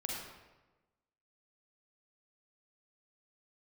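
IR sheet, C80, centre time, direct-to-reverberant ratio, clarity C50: 2.0 dB, 76 ms, −2.5 dB, −1.0 dB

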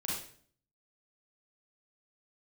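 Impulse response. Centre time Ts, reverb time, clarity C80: 56 ms, 0.50 s, 5.5 dB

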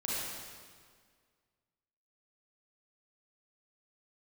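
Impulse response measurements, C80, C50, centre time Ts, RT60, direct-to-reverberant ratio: −1.5 dB, −5.0 dB, 137 ms, 1.8 s, −7.5 dB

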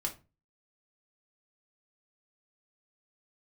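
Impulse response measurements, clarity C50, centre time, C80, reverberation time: 13.5 dB, 11 ms, 21.0 dB, 0.30 s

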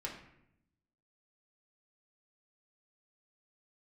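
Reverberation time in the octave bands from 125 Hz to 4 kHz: 1.2, 1.2, 0.80, 0.70, 0.75, 0.55 seconds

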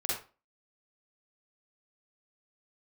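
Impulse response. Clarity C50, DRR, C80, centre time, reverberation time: −1.0 dB, −6.0 dB, 7.0 dB, 52 ms, 0.35 s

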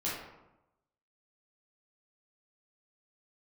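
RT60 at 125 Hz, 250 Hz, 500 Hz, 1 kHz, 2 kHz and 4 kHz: 1.1, 1.0, 0.95, 0.95, 0.70, 0.50 seconds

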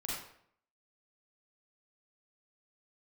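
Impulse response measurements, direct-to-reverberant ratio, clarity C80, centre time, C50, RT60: −5.5 dB, 3.5 dB, 64 ms, −1.0 dB, 0.65 s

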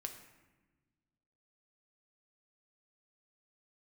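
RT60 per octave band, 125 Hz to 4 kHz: 2.1, 2.0, 1.3, 1.1, 1.1, 0.75 seconds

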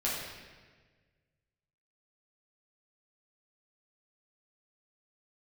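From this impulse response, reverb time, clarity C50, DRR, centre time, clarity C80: 1.5 s, 0.0 dB, −7.5 dB, 83 ms, 2.5 dB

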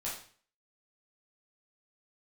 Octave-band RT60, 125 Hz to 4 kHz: 0.55, 0.50, 0.45, 0.45, 0.45, 0.45 seconds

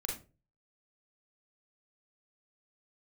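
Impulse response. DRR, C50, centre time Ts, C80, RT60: −1.0 dB, 5.5 dB, 30 ms, 12.5 dB, 0.30 s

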